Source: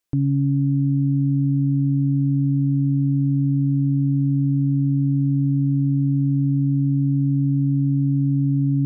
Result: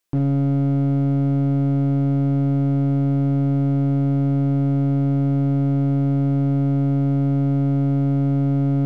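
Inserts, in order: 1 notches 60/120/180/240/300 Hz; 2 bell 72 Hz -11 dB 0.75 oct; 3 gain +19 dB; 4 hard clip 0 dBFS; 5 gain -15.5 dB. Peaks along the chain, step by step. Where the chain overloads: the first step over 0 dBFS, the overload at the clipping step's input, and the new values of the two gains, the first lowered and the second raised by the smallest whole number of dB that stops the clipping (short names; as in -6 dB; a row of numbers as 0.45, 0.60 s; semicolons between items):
-13.5, -14.0, +5.0, 0.0, -15.5 dBFS; step 3, 5.0 dB; step 3 +14 dB, step 5 -10.5 dB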